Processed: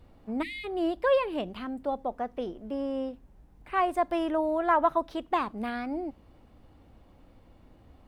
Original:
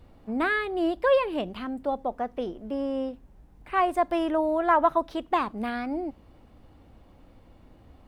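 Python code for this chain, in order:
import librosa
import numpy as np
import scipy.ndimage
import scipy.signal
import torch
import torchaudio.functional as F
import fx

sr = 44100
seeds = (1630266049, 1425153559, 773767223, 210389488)

y = fx.spec_erase(x, sr, start_s=0.42, length_s=0.22, low_hz=340.0, high_hz=1800.0)
y = y * librosa.db_to_amplitude(-2.5)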